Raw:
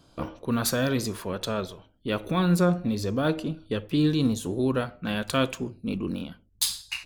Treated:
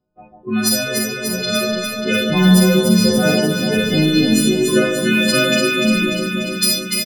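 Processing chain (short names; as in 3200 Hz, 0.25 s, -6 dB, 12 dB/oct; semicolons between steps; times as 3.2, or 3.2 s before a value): frequency quantiser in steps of 3 st; reverb removal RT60 0.57 s; in parallel at +1 dB: compressor, threshold -32 dBFS, peak gain reduction 20.5 dB; on the sum: Schroeder reverb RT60 0.78 s, combs from 29 ms, DRR -0.5 dB; spectral noise reduction 20 dB; AGC gain up to 6 dB; comb 5.2 ms, depth 48%; low-pass opened by the level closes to 770 Hz, open at -11 dBFS; on a send: echo with dull and thin repeats by turns 0.147 s, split 1100 Hz, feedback 84%, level -3.5 dB; on the sum: gain -1 dB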